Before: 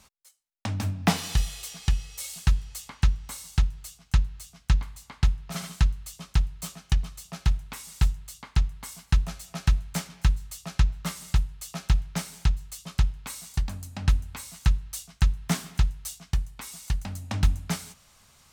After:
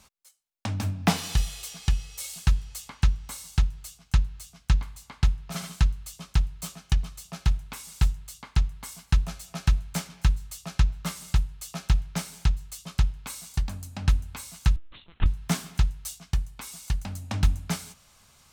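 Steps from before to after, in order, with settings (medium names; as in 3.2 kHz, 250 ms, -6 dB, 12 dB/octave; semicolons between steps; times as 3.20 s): band-stop 1.9 kHz, Q 27; 14.76–15.26 s: LPC vocoder at 8 kHz pitch kept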